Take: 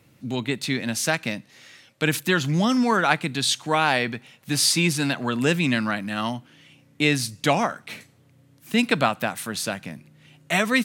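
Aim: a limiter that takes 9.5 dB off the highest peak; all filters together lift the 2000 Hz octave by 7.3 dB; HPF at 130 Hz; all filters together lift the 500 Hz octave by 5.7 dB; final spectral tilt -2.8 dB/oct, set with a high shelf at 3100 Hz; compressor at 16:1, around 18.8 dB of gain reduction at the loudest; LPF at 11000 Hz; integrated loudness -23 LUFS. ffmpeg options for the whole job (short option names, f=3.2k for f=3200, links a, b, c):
-af "highpass=130,lowpass=11k,equalizer=f=500:t=o:g=6.5,equalizer=f=2k:t=o:g=6,highshelf=f=3.1k:g=8,acompressor=threshold=-28dB:ratio=16,volume=11dB,alimiter=limit=-10.5dB:level=0:latency=1"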